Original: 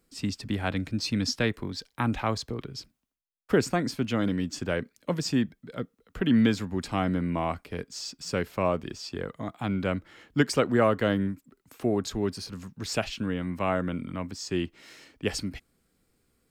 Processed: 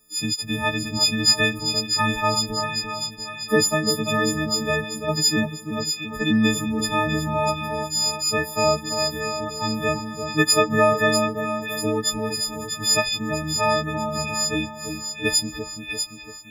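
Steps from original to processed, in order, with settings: frequency quantiser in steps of 6 st; split-band echo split 1300 Hz, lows 0.342 s, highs 0.644 s, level -6.5 dB; gain +2 dB

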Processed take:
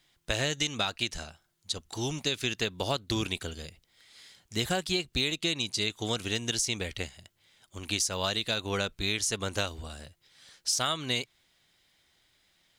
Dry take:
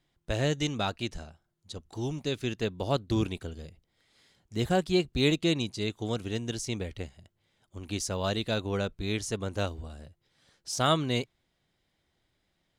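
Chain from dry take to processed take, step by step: tilt shelf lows -7 dB, about 1100 Hz; compressor 12:1, threshold -31 dBFS, peak gain reduction 13 dB; gain +6 dB

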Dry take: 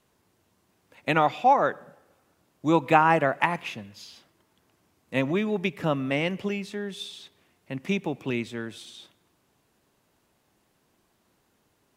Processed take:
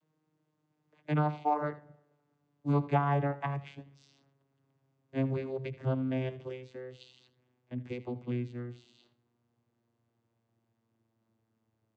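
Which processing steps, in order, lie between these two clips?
vocoder on a gliding note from D#3, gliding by -6 st; echo 80 ms -16.5 dB; gain -6.5 dB

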